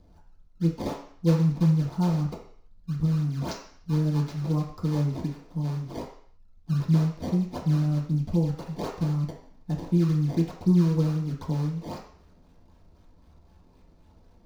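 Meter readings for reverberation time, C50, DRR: 0.55 s, 6.0 dB, -6.5 dB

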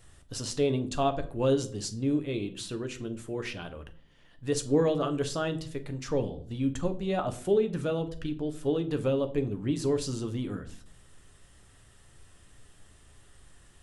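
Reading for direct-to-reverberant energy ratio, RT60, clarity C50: 7.0 dB, 0.50 s, 15.5 dB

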